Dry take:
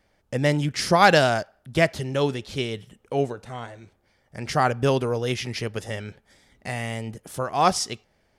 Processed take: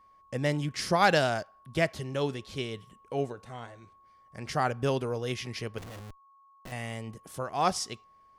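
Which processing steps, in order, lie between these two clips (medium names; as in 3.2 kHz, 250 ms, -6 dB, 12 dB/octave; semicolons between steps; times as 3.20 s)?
5.78–6.72 s: Schmitt trigger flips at -36.5 dBFS; whistle 1.1 kHz -50 dBFS; trim -7 dB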